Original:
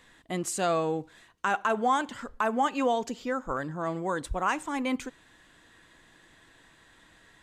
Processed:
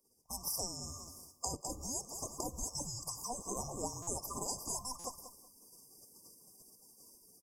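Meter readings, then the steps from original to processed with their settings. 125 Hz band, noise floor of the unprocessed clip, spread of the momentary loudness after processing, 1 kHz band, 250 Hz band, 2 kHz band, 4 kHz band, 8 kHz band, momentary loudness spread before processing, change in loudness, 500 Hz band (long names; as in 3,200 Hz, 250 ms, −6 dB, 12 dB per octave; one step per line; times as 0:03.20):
−7.5 dB, −59 dBFS, 19 LU, −17.0 dB, −16.0 dB, below −40 dB, −4.0 dB, +3.5 dB, 8 LU, −10.5 dB, −16.5 dB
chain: neighbouring bands swapped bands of 1,000 Hz
guitar amp tone stack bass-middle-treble 5-5-5
hum removal 71.34 Hz, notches 2
gate on every frequency bin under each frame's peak −20 dB weak
automatic gain control gain up to 11 dB
repeating echo 185 ms, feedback 27%, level −16 dB
downward compressor 12 to 1, threshold −51 dBFS, peak gain reduction 16.5 dB
linear-phase brick-wall band-stop 1,200–4,700 Hz
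buffer that repeats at 0:04.02/0:04.99, samples 256, times 8
one half of a high-frequency compander decoder only
level +18 dB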